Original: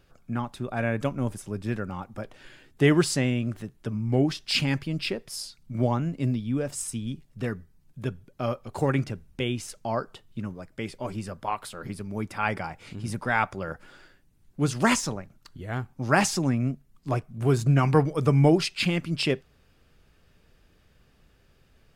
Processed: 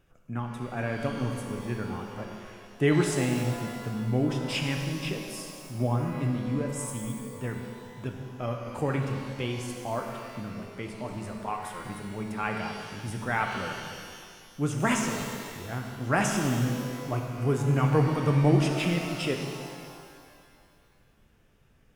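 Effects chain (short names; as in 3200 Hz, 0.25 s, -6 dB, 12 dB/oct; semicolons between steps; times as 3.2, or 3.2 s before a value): bell 4400 Hz -14 dB 0.32 oct; shimmer reverb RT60 2.1 s, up +12 st, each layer -8 dB, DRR 2.5 dB; gain -4.5 dB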